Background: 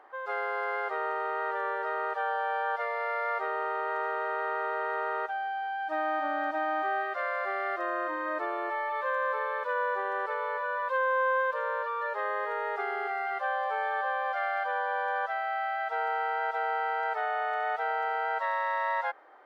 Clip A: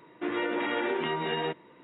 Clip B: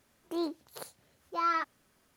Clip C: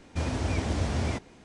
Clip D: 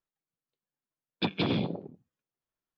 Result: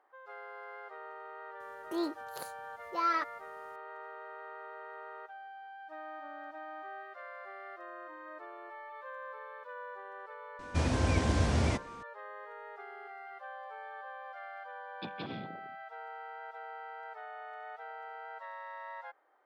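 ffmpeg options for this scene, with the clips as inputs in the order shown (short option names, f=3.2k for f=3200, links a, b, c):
-filter_complex "[0:a]volume=-15dB[a];[4:a]highpass=93[b];[2:a]atrim=end=2.16,asetpts=PTS-STARTPTS,volume=-1dB,afade=t=in:d=0.004:c=hsin,afade=t=out:st=2.156:d=0.004:c=hsin,adelay=1600[c];[3:a]atrim=end=1.44,asetpts=PTS-STARTPTS,afade=t=in:d=0.004:c=hsin,afade=t=out:st=1.436:d=0.004:c=hsin,adelay=10590[d];[b]atrim=end=2.77,asetpts=PTS-STARTPTS,volume=-14dB,afade=t=in:d=0.004:c=hsin,afade=t=out:st=2.766:d=0.004:c=hsin,adelay=608580S[e];[a][c][d][e]amix=inputs=4:normalize=0"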